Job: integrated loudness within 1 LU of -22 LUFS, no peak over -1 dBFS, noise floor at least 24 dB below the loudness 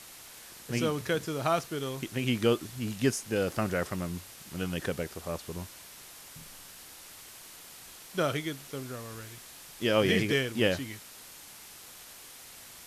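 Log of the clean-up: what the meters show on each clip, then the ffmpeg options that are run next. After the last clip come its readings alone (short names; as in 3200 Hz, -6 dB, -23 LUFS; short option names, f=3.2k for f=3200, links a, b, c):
noise floor -49 dBFS; noise floor target -55 dBFS; loudness -31.0 LUFS; peak -10.5 dBFS; loudness target -22.0 LUFS
-> -af "afftdn=nr=6:nf=-49"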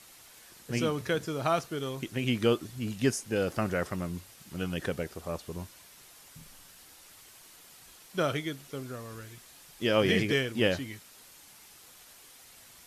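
noise floor -54 dBFS; noise floor target -55 dBFS
-> -af "afftdn=nr=6:nf=-54"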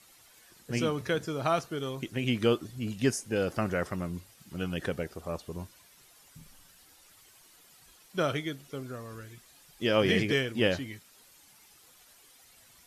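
noise floor -59 dBFS; loudness -31.0 LUFS; peak -10.5 dBFS; loudness target -22.0 LUFS
-> -af "volume=9dB"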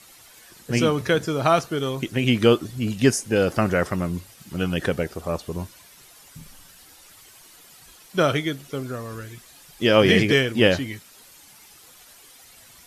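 loudness -22.0 LUFS; peak -1.5 dBFS; noise floor -50 dBFS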